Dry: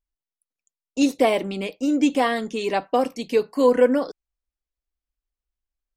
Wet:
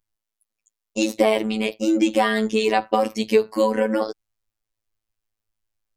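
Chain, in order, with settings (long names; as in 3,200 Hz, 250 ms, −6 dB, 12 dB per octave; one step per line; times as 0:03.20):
downward compressor, threshold −19 dBFS, peak gain reduction 8 dB
phases set to zero 109 Hz
level +8 dB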